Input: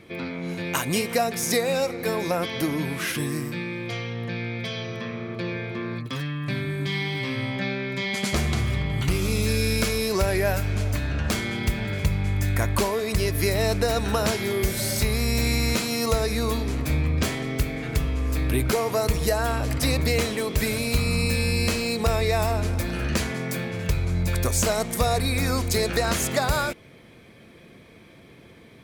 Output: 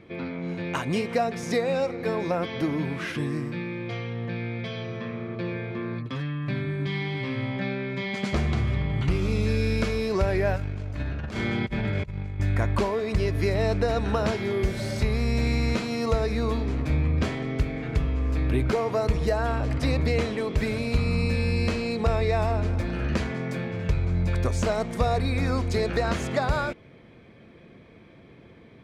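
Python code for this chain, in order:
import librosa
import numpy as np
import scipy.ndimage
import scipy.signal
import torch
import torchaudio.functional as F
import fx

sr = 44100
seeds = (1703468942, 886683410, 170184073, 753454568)

y = fx.over_compress(x, sr, threshold_db=-28.0, ratio=-0.5, at=(10.56, 12.4))
y = fx.spacing_loss(y, sr, db_at_10k=20)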